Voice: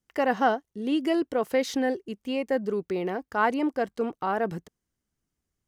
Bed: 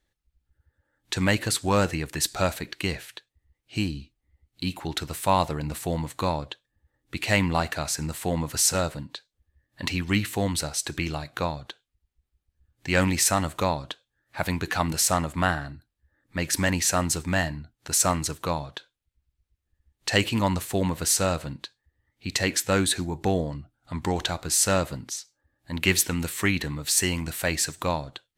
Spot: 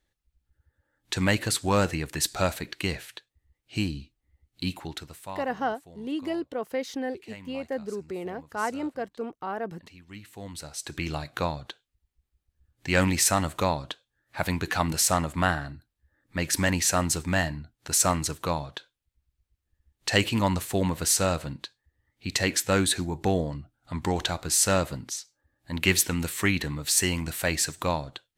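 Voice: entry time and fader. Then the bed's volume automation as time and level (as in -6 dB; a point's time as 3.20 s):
5.20 s, -5.5 dB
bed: 4.70 s -1 dB
5.57 s -23 dB
10.02 s -23 dB
11.15 s -0.5 dB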